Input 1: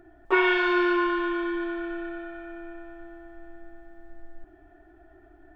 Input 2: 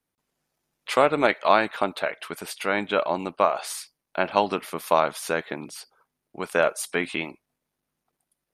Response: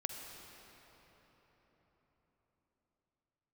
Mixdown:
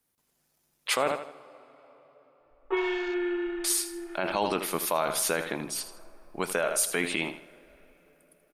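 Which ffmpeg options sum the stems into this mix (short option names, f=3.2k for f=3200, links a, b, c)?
-filter_complex "[0:a]afwtdn=0.0158,aecho=1:1:2.4:0.95,adelay=2400,volume=-12dB,asplit=2[a][b];[b]volume=-9.5dB[c];[1:a]highshelf=f=5.7k:g=10,volume=0dB,asplit=3[d][e][f];[d]atrim=end=1.12,asetpts=PTS-STARTPTS,afade=t=out:st=1.116:d=0.004:c=hsin[g];[e]atrim=start=1.12:end=3.64,asetpts=PTS-STARTPTS,volume=0[h];[f]atrim=start=3.64,asetpts=PTS-STARTPTS,afade=t=in:d=0.004:c=hsin[i];[g][h][i]concat=n=3:v=0:a=1,asplit=4[j][k][l][m];[k]volume=-20.5dB[n];[l]volume=-12.5dB[o];[m]apad=whole_len=350904[p];[a][p]sidechaincompress=threshold=-38dB:ratio=8:attack=16:release=428[q];[2:a]atrim=start_sample=2205[r];[c][n]amix=inputs=2:normalize=0[s];[s][r]afir=irnorm=-1:irlink=0[t];[o]aecho=0:1:80|160|240|320|400:1|0.34|0.116|0.0393|0.0134[u];[q][j][t][u]amix=inputs=4:normalize=0,alimiter=limit=-14.5dB:level=0:latency=1:release=43"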